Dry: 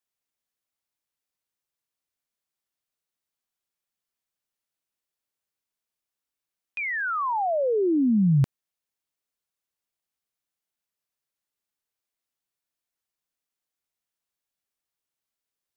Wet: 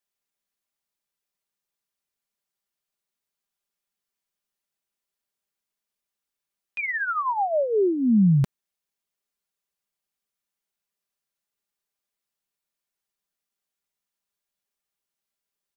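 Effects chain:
comb filter 5 ms, depth 48%

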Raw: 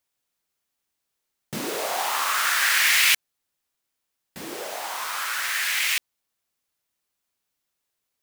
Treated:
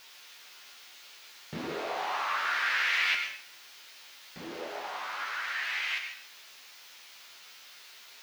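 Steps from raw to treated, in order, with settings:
spike at every zero crossing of −22 dBFS
high-frequency loss of the air 260 metres
tuned comb filter 83 Hz, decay 0.18 s, harmonics all, mix 80%
dense smooth reverb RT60 0.52 s, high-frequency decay 1×, pre-delay 85 ms, DRR 5.5 dB

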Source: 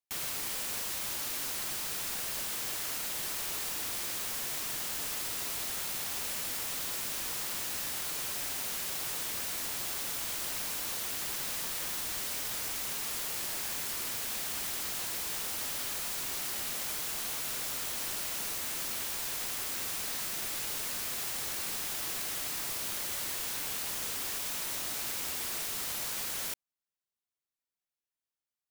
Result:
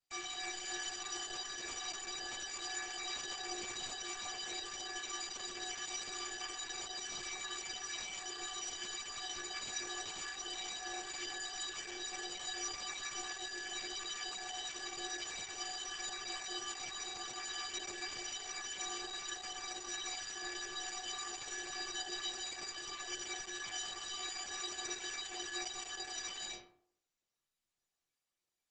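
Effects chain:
in parallel at 0 dB: brickwall limiter −29 dBFS, peak gain reduction 7.5 dB
on the sum: stiff-string resonator 350 Hz, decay 0.7 s, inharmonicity 0.03
level +13.5 dB
Opus 12 kbit/s 48,000 Hz

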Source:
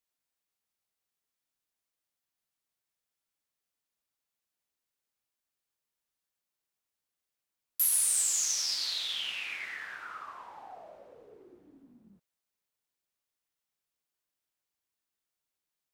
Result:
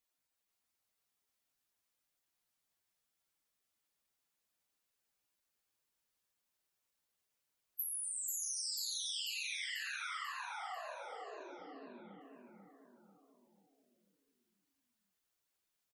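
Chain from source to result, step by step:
gate on every frequency bin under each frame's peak −10 dB strong
downward compressor 4 to 1, threshold −43 dBFS, peak gain reduction 15 dB
repeating echo 491 ms, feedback 50%, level −4 dB
level +2 dB

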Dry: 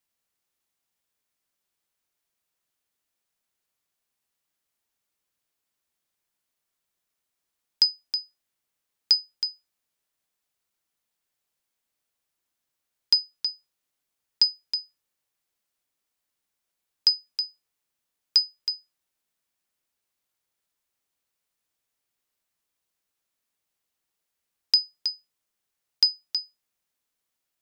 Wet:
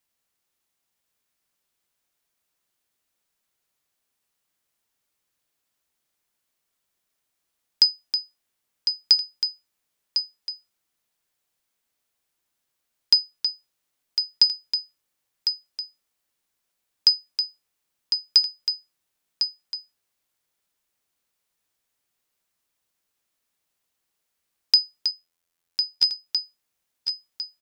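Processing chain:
0:25.11–0:26.27: phases set to zero 84.9 Hz
single-tap delay 1,053 ms −7.5 dB
level +3 dB

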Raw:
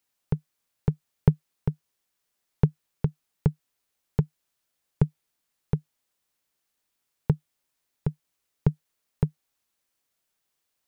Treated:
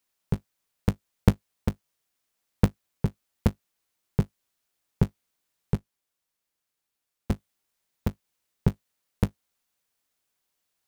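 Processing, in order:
sub-harmonics by changed cycles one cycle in 3, inverted
0:05.76–0:07.31: tube saturation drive 19 dB, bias 0.75

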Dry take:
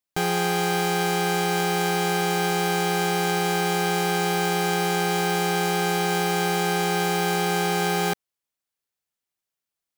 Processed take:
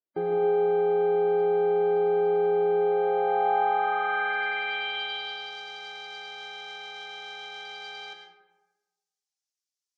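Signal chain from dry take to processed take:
mains-hum notches 50/100/150/200/250/300/350 Hz
gate on every frequency bin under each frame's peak −15 dB strong
low-shelf EQ 140 Hz −5 dB
in parallel at −9.5 dB: hard clipping −24.5 dBFS, distortion −11 dB
on the sum: band-pass filter sweep 370 Hz → 5,700 Hz, 0:02.76–0:05.58
on a send at −4 dB: convolution reverb RT60 1.2 s, pre-delay 65 ms
on the sum: level +1.5 dB

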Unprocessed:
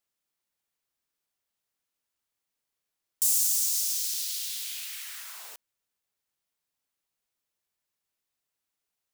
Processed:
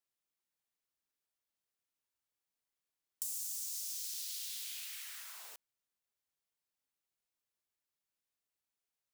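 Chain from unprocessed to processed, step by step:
downward compressor 5 to 1, threshold −31 dBFS, peak gain reduction 10 dB
level −7 dB

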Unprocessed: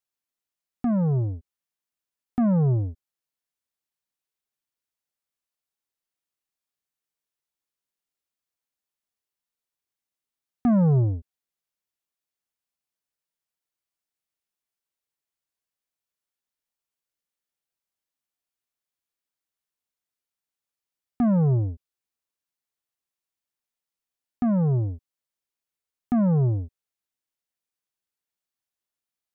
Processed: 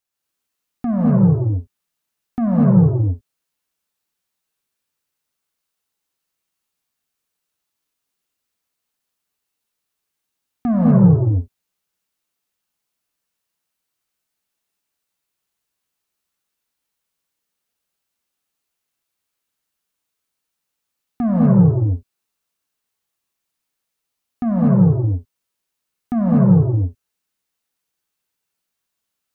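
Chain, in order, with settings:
in parallel at +2 dB: brickwall limiter −25 dBFS, peak gain reduction 8 dB
on the sum: reverb whose tail is shaped and stops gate 270 ms rising, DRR −4.5 dB
level −2.5 dB

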